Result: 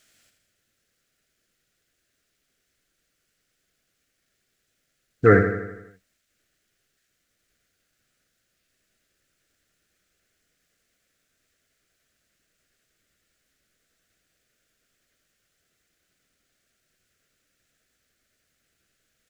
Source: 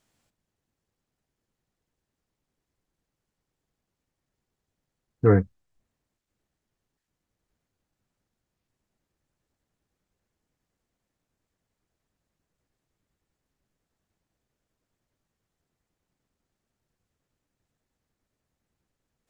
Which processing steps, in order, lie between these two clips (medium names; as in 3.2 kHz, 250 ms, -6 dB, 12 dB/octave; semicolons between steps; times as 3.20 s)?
FFT filter 150 Hz 0 dB, 650 Hz +7 dB, 930 Hz -7 dB, 1.4 kHz +14 dB; on a send: feedback delay 82 ms, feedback 56%, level -8 dB; on the sum: trim -1 dB